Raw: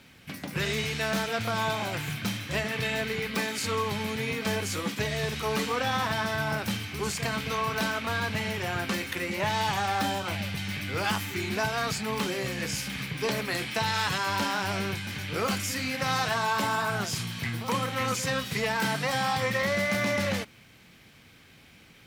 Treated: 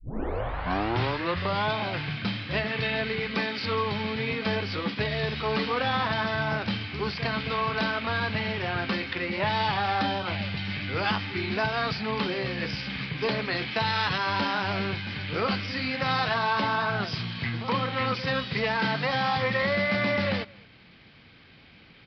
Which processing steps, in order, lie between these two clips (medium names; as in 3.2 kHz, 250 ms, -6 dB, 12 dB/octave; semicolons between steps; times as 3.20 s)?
tape start-up on the opening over 1.73 s; resampled via 11.025 kHz; echo from a far wall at 38 m, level -25 dB; trim +1.5 dB